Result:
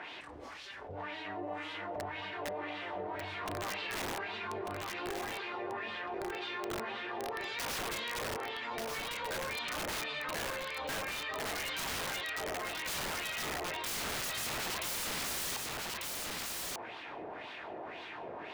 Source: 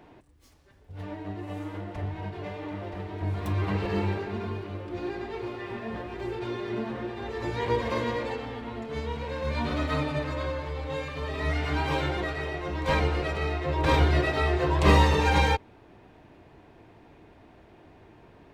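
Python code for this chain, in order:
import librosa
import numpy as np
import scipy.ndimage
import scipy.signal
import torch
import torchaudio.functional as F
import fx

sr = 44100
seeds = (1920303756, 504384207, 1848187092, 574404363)

p1 = fx.wah_lfo(x, sr, hz=1.9, low_hz=570.0, high_hz=3600.0, q=2.1)
p2 = (np.mod(10.0 ** (33.5 / 20.0) * p1 + 1.0, 2.0) - 1.0) / 10.0 ** (33.5 / 20.0)
p3 = p2 + fx.echo_single(p2, sr, ms=1194, db=-8.5, dry=0)
y = fx.env_flatten(p3, sr, amount_pct=70)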